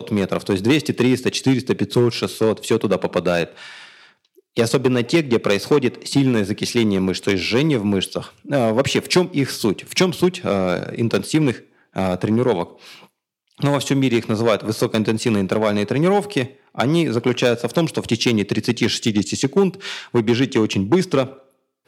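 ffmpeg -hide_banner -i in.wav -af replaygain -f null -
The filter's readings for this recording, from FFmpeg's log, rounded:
track_gain = -0.2 dB
track_peak = 0.549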